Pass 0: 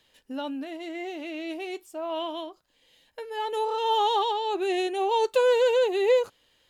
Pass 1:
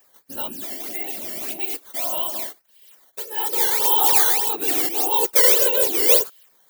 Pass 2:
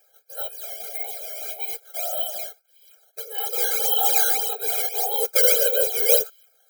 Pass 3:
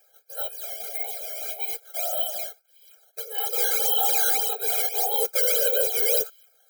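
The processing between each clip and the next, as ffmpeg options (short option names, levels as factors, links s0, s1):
-af "acrusher=samples=10:mix=1:aa=0.000001:lfo=1:lforange=16:lforate=1.7,aemphasis=mode=production:type=riaa,afftfilt=real='hypot(re,im)*cos(2*PI*random(0))':imag='hypot(re,im)*sin(2*PI*random(1))':win_size=512:overlap=0.75,volume=2"
-af "afftfilt=real='re*eq(mod(floor(b*sr/1024/420),2),1)':imag='im*eq(mod(floor(b*sr/1024/420),2),1)':win_size=1024:overlap=0.75"
-af "highpass=270,alimiter=limit=0.251:level=0:latency=1:release=13"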